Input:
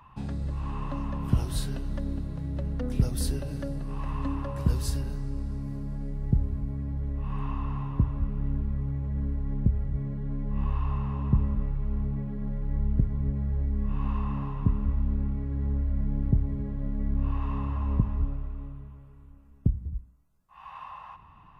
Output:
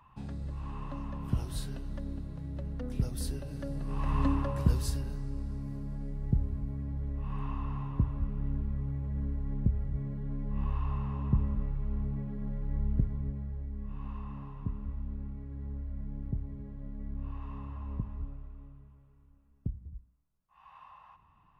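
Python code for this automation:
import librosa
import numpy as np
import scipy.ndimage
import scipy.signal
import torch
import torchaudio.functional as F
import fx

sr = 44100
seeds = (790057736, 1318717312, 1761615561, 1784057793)

y = fx.gain(x, sr, db=fx.line((3.5, -6.5), (4.21, 3.5), (4.98, -4.0), (13.02, -4.0), (13.61, -11.0)))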